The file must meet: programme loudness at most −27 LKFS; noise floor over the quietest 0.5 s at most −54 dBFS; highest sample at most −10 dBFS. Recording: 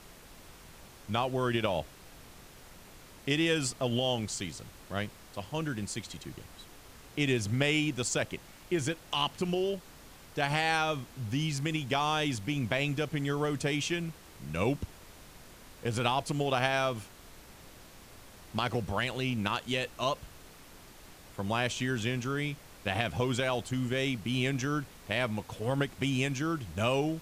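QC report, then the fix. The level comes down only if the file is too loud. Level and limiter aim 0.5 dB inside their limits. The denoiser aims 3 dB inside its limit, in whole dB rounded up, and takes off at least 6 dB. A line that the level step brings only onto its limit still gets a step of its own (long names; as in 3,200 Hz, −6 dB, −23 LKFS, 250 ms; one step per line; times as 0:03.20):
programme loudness −32.0 LKFS: in spec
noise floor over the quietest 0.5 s −52 dBFS: out of spec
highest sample −12.0 dBFS: in spec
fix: broadband denoise 6 dB, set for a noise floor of −52 dBFS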